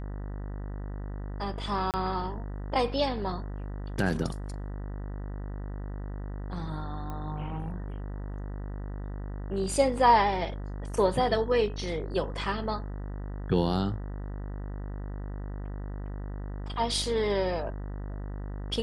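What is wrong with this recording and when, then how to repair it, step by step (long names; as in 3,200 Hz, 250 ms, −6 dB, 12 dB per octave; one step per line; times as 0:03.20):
mains buzz 50 Hz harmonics 39 −36 dBFS
0:01.91–0:01.94: drop-out 28 ms
0:07.10: click −25 dBFS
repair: click removal
hum removal 50 Hz, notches 39
repair the gap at 0:01.91, 28 ms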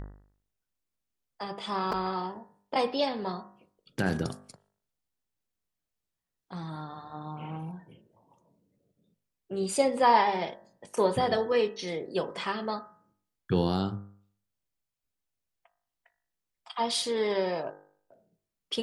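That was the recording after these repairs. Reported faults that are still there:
none of them is left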